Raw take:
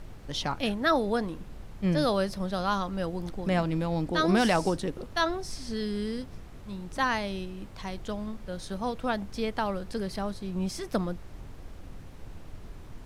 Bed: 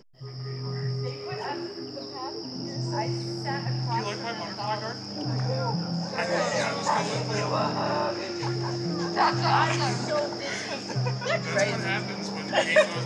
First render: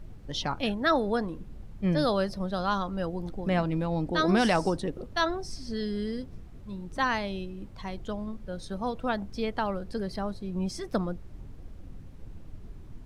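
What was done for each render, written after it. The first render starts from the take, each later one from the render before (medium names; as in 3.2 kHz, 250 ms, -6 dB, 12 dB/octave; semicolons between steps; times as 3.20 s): noise reduction 9 dB, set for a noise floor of -45 dBFS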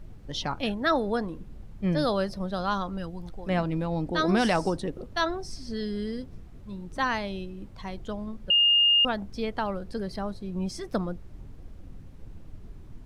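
2.97–3.48 s: peaking EQ 780 Hz -> 180 Hz -9.5 dB 1.9 oct; 8.50–9.05 s: bleep 2.83 kHz -17 dBFS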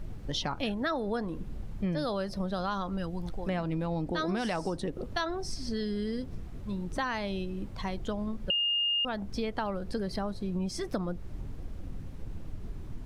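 in parallel at -2.5 dB: peak limiter -20.5 dBFS, peak gain reduction 7 dB; on the sum: compression 4:1, threshold -30 dBFS, peak gain reduction 12 dB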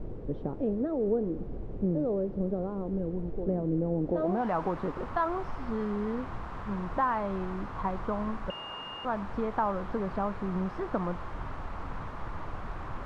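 word length cut 6-bit, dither triangular; low-pass sweep 430 Hz -> 1.1 kHz, 4.00–4.51 s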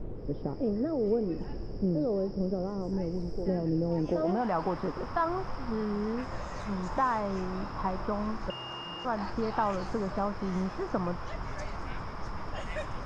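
add bed -19 dB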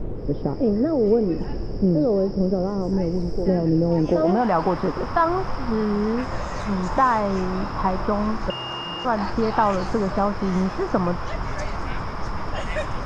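trim +9.5 dB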